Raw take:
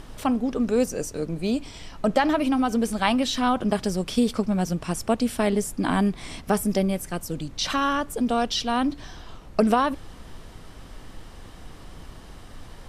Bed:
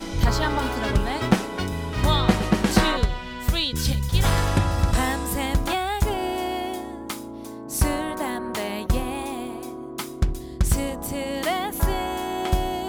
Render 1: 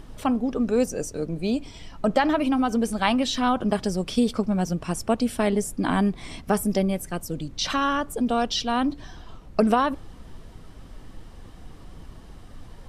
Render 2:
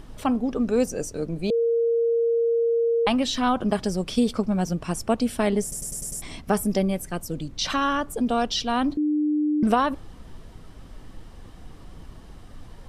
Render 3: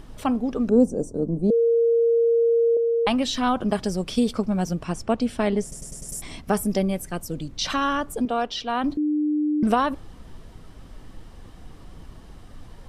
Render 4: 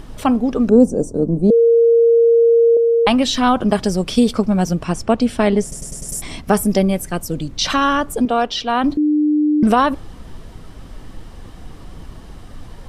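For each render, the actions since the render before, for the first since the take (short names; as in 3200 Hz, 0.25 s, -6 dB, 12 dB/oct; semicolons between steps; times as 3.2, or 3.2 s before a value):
denoiser 6 dB, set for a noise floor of -44 dBFS
1.5–3.07 bleep 464 Hz -18.5 dBFS; 5.62 stutter in place 0.10 s, 6 plays; 8.97–9.63 bleep 300 Hz -19.5 dBFS
0.69–2.77 EQ curve 110 Hz 0 dB, 230 Hz +8 dB, 330 Hz +5 dB, 970 Hz -2 dB, 2300 Hz -29 dB, 8600 Hz -6 dB, 13000 Hz -18 dB; 4.84–6.09 air absorption 58 m; 8.25–8.84 tone controls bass -10 dB, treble -10 dB
gain +7.5 dB; limiter -2 dBFS, peak gain reduction 2.5 dB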